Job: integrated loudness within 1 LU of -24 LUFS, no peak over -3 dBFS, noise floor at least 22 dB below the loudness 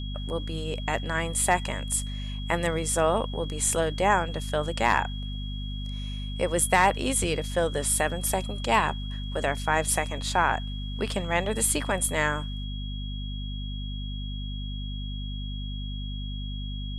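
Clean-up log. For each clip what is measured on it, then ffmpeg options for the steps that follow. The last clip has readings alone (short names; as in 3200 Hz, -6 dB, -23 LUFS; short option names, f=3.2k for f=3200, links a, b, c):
hum 50 Hz; harmonics up to 250 Hz; hum level -31 dBFS; steady tone 3300 Hz; tone level -41 dBFS; loudness -27.5 LUFS; peak -8.5 dBFS; loudness target -24.0 LUFS
-> -af "bandreject=f=50:t=h:w=6,bandreject=f=100:t=h:w=6,bandreject=f=150:t=h:w=6,bandreject=f=200:t=h:w=6,bandreject=f=250:t=h:w=6"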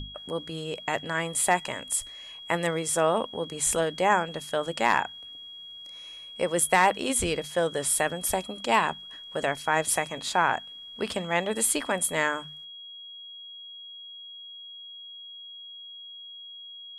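hum none; steady tone 3300 Hz; tone level -41 dBFS
-> -af "bandreject=f=3.3k:w=30"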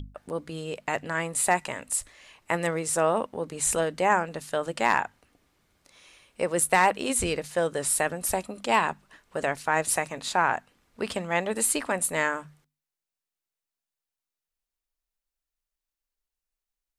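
steady tone none; loudness -26.5 LUFS; peak -9.0 dBFS; loudness target -24.0 LUFS
-> -af "volume=2.5dB"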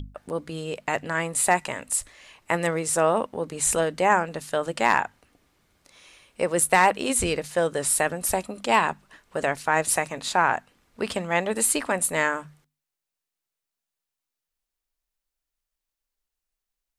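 loudness -24.0 LUFS; peak -6.5 dBFS; noise floor -87 dBFS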